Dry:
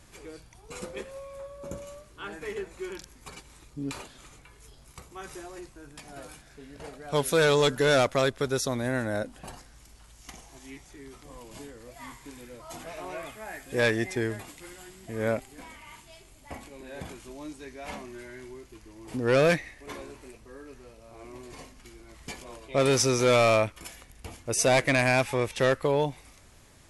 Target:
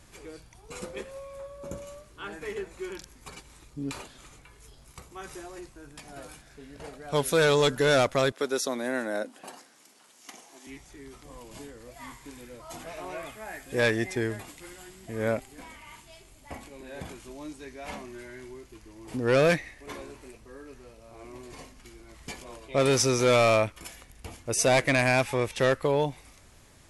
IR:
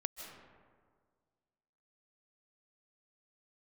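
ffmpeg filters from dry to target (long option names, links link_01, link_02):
-filter_complex "[0:a]asettb=1/sr,asplit=3[link_01][link_02][link_03];[link_01]atrim=end=8.324[link_04];[link_02]atrim=start=8.32:end=10.67,asetpts=PTS-STARTPTS,afade=type=in:duration=0.004:curve=qsin,afade=type=out:start_time=2.346:duration=0.004:curve=qsin,highpass=frequency=230:width=0.5412,highpass=frequency=230:width=1.3066[link_05];[link_03]atrim=start=10.666[link_06];[link_04][link_05]acrossfade=duration=0.004:curve1=hsin:curve2=qsin[link_07];[link_07][link_06]acrossfade=duration=0.004:curve1=qsin:curve2=hsin"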